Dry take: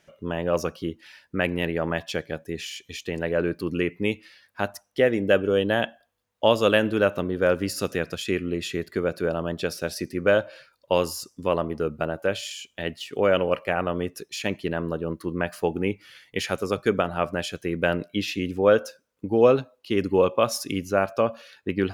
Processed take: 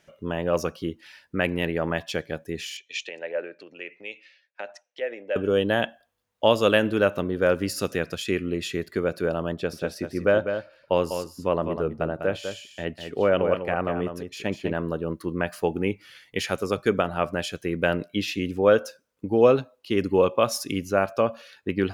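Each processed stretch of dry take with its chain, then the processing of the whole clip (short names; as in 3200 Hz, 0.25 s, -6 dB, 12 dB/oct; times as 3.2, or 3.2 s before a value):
2.77–5.36 compressor 12:1, threshold -29 dBFS + speaker cabinet 490–6400 Hz, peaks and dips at 550 Hz +9 dB, 1100 Hz -8 dB, 1800 Hz +4 dB, 2500 Hz +7 dB, 4800 Hz -5 dB + three-band expander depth 100%
9.53–14.75 high shelf 2600 Hz -9 dB + echo 0.199 s -8 dB
whole clip: dry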